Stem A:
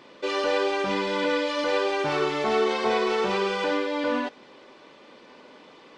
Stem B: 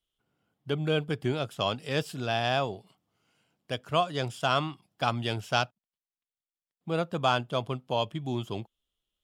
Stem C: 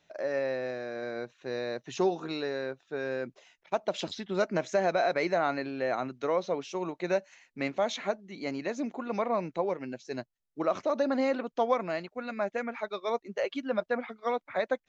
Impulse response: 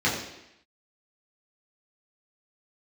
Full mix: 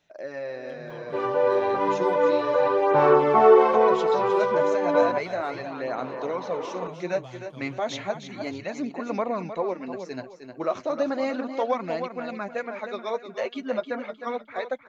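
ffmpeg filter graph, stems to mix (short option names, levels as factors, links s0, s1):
-filter_complex "[0:a]equalizer=f=125:t=o:w=1:g=8,equalizer=f=500:t=o:w=1:g=10,equalizer=f=1000:t=o:w=1:g=11,equalizer=f=4000:t=o:w=1:g=-10,equalizer=f=8000:t=o:w=1:g=-12,acompressor=mode=upward:threshold=0.0355:ratio=2.5,adelay=900,volume=1.26[s0];[1:a]acrossover=split=180[s1][s2];[s2]acompressor=threshold=0.00447:ratio=2[s3];[s1][s3]amix=inputs=2:normalize=0,volume=0.355,asplit=2[s4][s5];[2:a]volume=1.06,asplit=2[s6][s7];[s7]volume=0.355[s8];[s5]apad=whole_len=303000[s9];[s0][s9]sidechaincompress=threshold=0.00562:ratio=4:attack=7.4:release=1350[s10];[s8]aecho=0:1:309|618|927|1236|1545:1|0.34|0.116|0.0393|0.0134[s11];[s10][s4][s6][s11]amix=inputs=4:normalize=0,dynaudnorm=f=310:g=13:m=1.68,flanger=delay=0:depth=8.2:regen=-30:speed=0.33:shape=sinusoidal"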